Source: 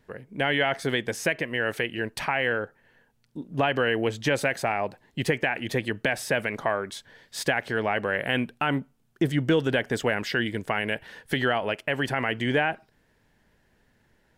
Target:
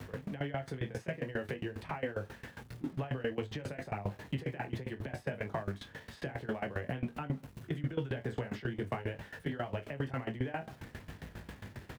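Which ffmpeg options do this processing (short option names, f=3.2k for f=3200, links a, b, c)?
-filter_complex "[0:a]aeval=exprs='val(0)+0.5*0.0141*sgn(val(0))':c=same,bass=f=250:g=2,treble=f=4k:g=-4,aecho=1:1:31|50:0.224|0.299,flanger=delay=19.5:depth=4.1:speed=0.44,highpass=f=56:w=0.5412,highpass=f=56:w=1.3066,lowshelf=f=150:g=9.5,acrossover=split=130|290|1100|3400[a][b][c][d][e];[a]acompressor=threshold=-31dB:ratio=4[f];[b]acompressor=threshold=-40dB:ratio=4[g];[c]acompressor=threshold=-32dB:ratio=4[h];[d]acompressor=threshold=-42dB:ratio=4[i];[e]acompressor=threshold=-57dB:ratio=4[j];[f][g][h][i][j]amix=inputs=5:normalize=0,atempo=1.2,alimiter=limit=-23dB:level=0:latency=1:release=41,aeval=exprs='val(0)*pow(10,-19*if(lt(mod(7.4*n/s,1),2*abs(7.4)/1000),1-mod(7.4*n/s,1)/(2*abs(7.4)/1000),(mod(7.4*n/s,1)-2*abs(7.4)/1000)/(1-2*abs(7.4)/1000))/20)':c=same,volume=1dB"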